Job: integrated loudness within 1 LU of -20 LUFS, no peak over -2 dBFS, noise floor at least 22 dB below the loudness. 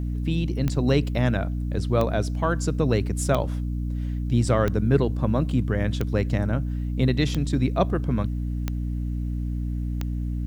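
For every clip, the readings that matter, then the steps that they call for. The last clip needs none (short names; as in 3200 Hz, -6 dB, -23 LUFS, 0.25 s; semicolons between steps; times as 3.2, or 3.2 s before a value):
clicks 8; hum 60 Hz; harmonics up to 300 Hz; hum level -25 dBFS; loudness -25.0 LUFS; peak -6.5 dBFS; loudness target -20.0 LUFS
-> de-click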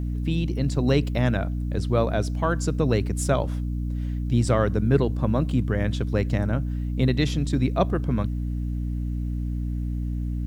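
clicks 0; hum 60 Hz; harmonics up to 300 Hz; hum level -25 dBFS
-> de-hum 60 Hz, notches 5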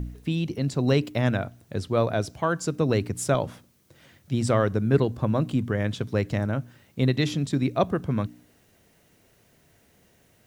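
hum none; loudness -26.0 LUFS; peak -7.0 dBFS; loudness target -20.0 LUFS
-> gain +6 dB; limiter -2 dBFS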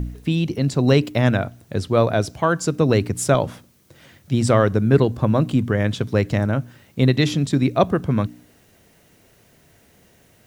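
loudness -20.0 LUFS; peak -2.0 dBFS; noise floor -56 dBFS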